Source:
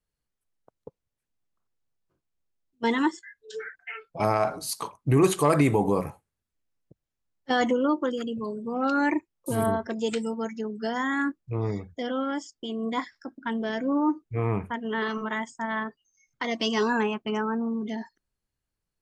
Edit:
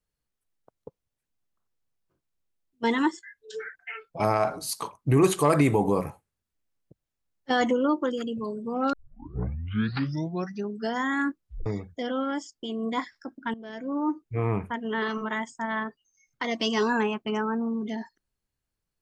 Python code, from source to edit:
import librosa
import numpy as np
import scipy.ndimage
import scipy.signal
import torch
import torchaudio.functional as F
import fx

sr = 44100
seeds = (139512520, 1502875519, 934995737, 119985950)

y = fx.edit(x, sr, fx.tape_start(start_s=8.93, length_s=1.82),
    fx.tape_stop(start_s=11.38, length_s=0.28),
    fx.fade_in_from(start_s=13.54, length_s=0.79, floor_db=-16.5), tone=tone)